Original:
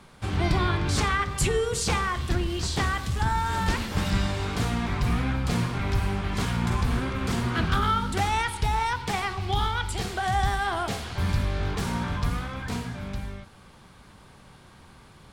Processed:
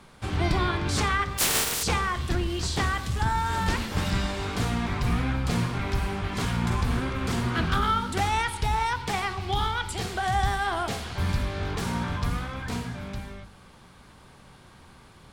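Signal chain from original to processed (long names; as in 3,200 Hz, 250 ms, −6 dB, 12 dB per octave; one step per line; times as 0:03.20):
0:01.37–0:01.82: compressing power law on the bin magnitudes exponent 0.18
mains-hum notches 50/100/150/200 Hz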